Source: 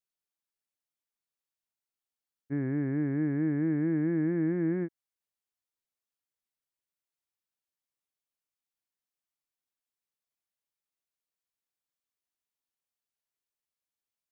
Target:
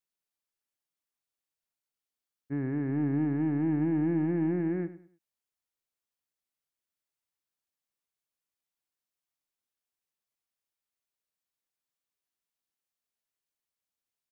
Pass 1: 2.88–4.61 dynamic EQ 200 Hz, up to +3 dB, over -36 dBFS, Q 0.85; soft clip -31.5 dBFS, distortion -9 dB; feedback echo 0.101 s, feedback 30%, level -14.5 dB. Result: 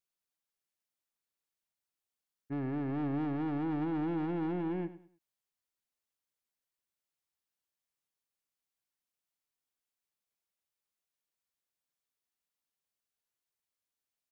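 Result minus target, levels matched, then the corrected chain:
soft clip: distortion +11 dB
2.88–4.61 dynamic EQ 200 Hz, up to +3 dB, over -36 dBFS, Q 0.85; soft clip -21 dBFS, distortion -19 dB; feedback echo 0.101 s, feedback 30%, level -14.5 dB

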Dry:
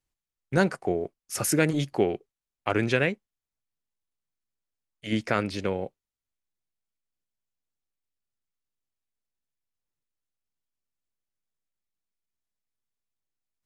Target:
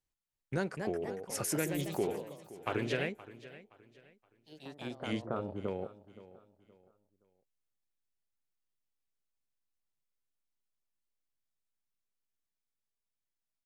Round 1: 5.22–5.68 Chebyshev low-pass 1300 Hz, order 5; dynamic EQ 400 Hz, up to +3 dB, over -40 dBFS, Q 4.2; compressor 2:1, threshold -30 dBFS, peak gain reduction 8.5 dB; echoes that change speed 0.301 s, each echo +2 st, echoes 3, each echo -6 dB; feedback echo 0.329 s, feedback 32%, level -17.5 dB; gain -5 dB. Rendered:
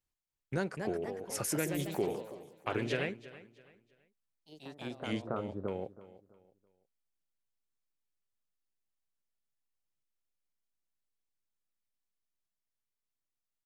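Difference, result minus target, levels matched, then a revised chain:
echo 0.192 s early
5.22–5.68 Chebyshev low-pass 1300 Hz, order 5; dynamic EQ 400 Hz, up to +3 dB, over -40 dBFS, Q 4.2; compressor 2:1, threshold -30 dBFS, peak gain reduction 8.5 dB; echoes that change speed 0.301 s, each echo +2 st, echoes 3, each echo -6 dB; feedback echo 0.521 s, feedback 32%, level -17.5 dB; gain -5 dB

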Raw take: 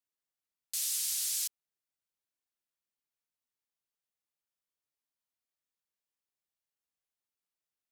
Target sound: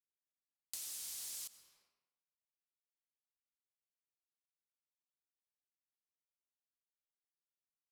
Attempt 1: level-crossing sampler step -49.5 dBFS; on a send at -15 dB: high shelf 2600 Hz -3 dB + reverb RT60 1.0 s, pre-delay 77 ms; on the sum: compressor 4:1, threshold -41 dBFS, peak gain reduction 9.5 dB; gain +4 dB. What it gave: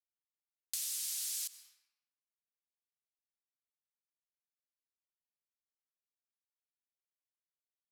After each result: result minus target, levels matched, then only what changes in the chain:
level-crossing sampler: distortion -18 dB; compressor: peak gain reduction -7 dB
change: level-crossing sampler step -37.5 dBFS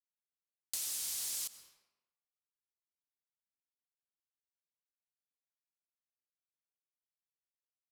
compressor: peak gain reduction -7 dB
change: compressor 4:1, threshold -50.5 dBFS, peak gain reduction 17 dB

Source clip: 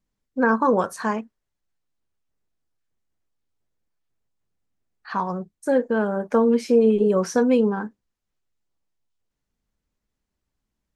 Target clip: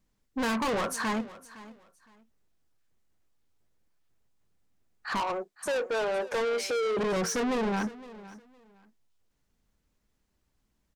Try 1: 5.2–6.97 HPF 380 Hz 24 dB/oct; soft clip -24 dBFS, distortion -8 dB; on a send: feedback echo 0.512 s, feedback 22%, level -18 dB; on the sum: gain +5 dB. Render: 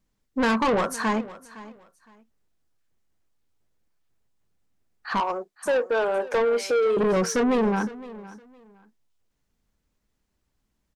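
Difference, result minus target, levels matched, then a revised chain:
soft clip: distortion -4 dB
5.2–6.97 HPF 380 Hz 24 dB/oct; soft clip -32 dBFS, distortion -4 dB; on a send: feedback echo 0.512 s, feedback 22%, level -18 dB; on the sum: gain +5 dB

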